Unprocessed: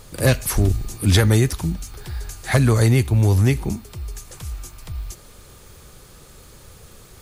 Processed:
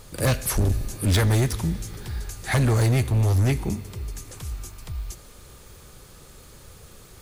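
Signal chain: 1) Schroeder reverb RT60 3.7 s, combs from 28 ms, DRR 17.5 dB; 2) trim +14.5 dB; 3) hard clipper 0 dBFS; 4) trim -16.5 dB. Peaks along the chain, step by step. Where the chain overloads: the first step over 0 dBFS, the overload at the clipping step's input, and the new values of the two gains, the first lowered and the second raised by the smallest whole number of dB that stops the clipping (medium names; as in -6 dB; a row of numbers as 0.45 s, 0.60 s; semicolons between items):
-6.0 dBFS, +8.5 dBFS, 0.0 dBFS, -16.5 dBFS; step 2, 8.5 dB; step 2 +5.5 dB, step 4 -7.5 dB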